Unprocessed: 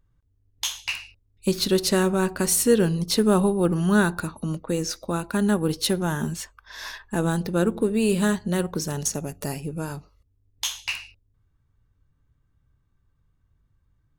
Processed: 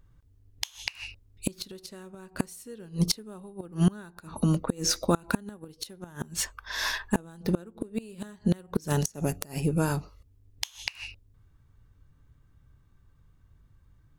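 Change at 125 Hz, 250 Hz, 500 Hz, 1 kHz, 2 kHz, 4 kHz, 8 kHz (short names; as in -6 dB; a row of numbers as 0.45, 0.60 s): -3.0, -7.0, -11.0, -6.5, -6.0, -5.0, -6.5 dB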